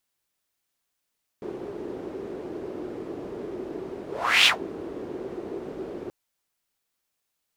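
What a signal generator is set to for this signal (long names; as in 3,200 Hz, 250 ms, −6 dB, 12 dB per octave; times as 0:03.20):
pass-by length 4.68 s, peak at 0:03.04, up 0.40 s, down 0.13 s, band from 370 Hz, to 3,100 Hz, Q 4.1, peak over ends 19 dB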